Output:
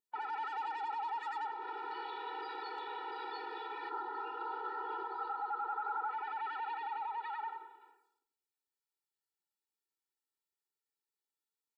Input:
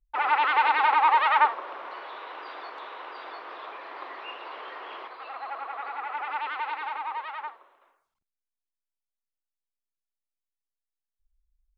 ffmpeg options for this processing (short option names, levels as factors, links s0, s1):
-filter_complex "[0:a]asoftclip=type=tanh:threshold=0.133,acompressor=threshold=0.0158:ratio=6,aecho=1:1:2.3:0.6,asplit=2[s0][s1];[s1]adelay=92,lowpass=f=1800:p=1,volume=0.355,asplit=2[s2][s3];[s3]adelay=92,lowpass=f=1800:p=1,volume=0.4,asplit=2[s4][s5];[s5]adelay=92,lowpass=f=1800:p=1,volume=0.4,asplit=2[s6][s7];[s7]adelay=92,lowpass=f=1800:p=1,volume=0.4[s8];[s0][s2][s4][s6][s8]amix=inputs=5:normalize=0,alimiter=level_in=2.99:limit=0.0631:level=0:latency=1:release=20,volume=0.335,asettb=1/sr,asplit=3[s9][s10][s11];[s9]atrim=end=3.894[s12];[s10]atrim=start=3.89:end=6.11,asetpts=PTS-STARTPTS,afade=t=in:d=0.004:c=qsin,afade=t=out:st=2.216:d=0.004:c=qsin,highshelf=f=1700:t=q:w=3:g=-6.5[s13];[s11]atrim=start=6.106[s14];[s12][s13]acrossfade=d=0.004:c1=hsin:c2=qsin[s15];[s15][s14]acrossfade=d=0.004:c1=qsin:c2=hsin,afftfilt=real='re*eq(mod(floor(b*sr/1024/250),2),1)':imag='im*eq(mod(floor(b*sr/1024/250),2),1)':win_size=1024:overlap=0.75,volume=1.19"